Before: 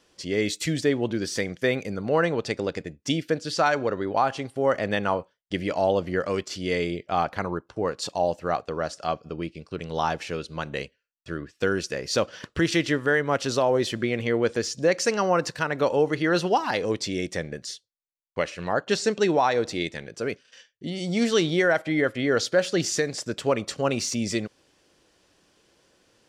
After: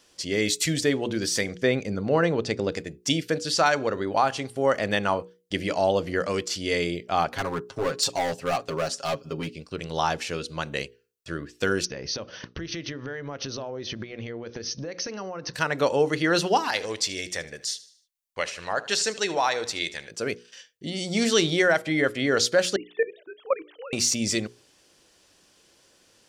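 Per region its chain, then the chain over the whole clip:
1.56–2.72 s: low-pass 6.9 kHz + tilt shelf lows +3.5 dB, about 670 Hz
7.32–9.55 s: overload inside the chain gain 22.5 dB + comb 7.4 ms, depth 87%
11.85–15.54 s: tilt EQ -1.5 dB/octave + compression 16:1, threshold -30 dBFS + brick-wall FIR low-pass 6.5 kHz
16.68–20.11 s: peaking EQ 190 Hz -11 dB 2.7 oct + feedback delay 76 ms, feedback 45%, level -17.5 dB
22.76–23.93 s: formants replaced by sine waves + level held to a coarse grid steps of 19 dB
whole clip: treble shelf 3.5 kHz +8.5 dB; hum notches 60/120/180/240/300/360/420/480 Hz

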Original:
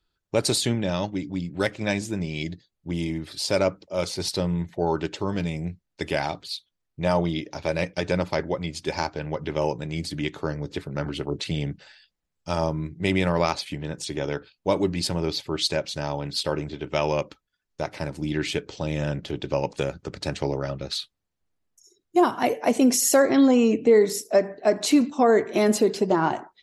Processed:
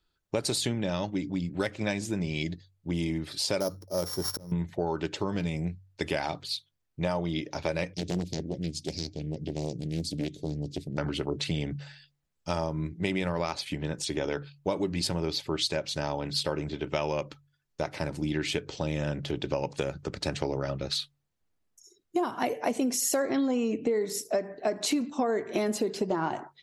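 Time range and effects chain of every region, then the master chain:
3.60–4.52 s: sorted samples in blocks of 8 samples + peaking EQ 2.6 kHz -13.5 dB 1.1 oct + slow attack 661 ms
7.94–10.98 s: Chebyshev band-stop 270–4600 Hz + loudspeaker Doppler distortion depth 0.74 ms
whole clip: de-hum 47.52 Hz, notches 3; compression, threshold -25 dBFS

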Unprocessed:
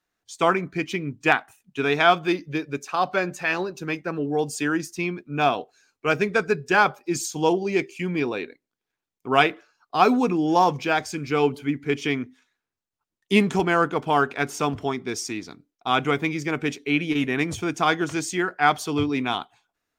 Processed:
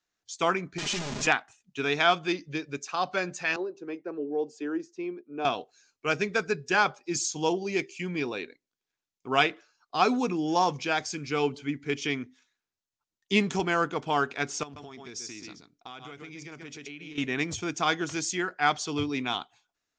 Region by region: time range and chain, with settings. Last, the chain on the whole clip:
0.78–1.27 s: one-bit comparator + comb 4.9 ms, depth 70%
3.56–5.45 s: ladder high-pass 310 Hz, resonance 40% + tilt EQ -4.5 dB/octave
14.63–17.18 s: delay 130 ms -9 dB + compression 16:1, threshold -33 dBFS
whole clip: steep low-pass 7.2 kHz 48 dB/octave; treble shelf 3.9 kHz +11.5 dB; trim -6.5 dB

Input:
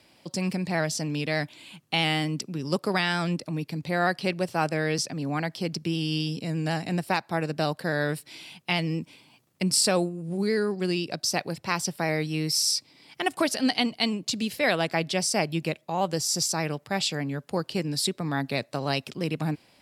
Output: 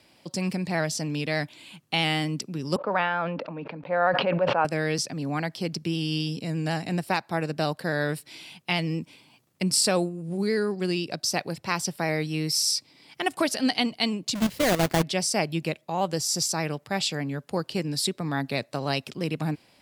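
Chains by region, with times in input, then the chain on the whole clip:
2.76–4.65 s: cabinet simulation 280–2400 Hz, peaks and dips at 360 Hz -9 dB, 540 Hz +7 dB, 940 Hz +5 dB, 1.4 kHz +3 dB, 2 kHz -7 dB + decay stretcher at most 31 dB/s
14.35–15.03 s: square wave that keeps the level + level held to a coarse grid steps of 11 dB + bass shelf 170 Hz +6.5 dB
whole clip: none

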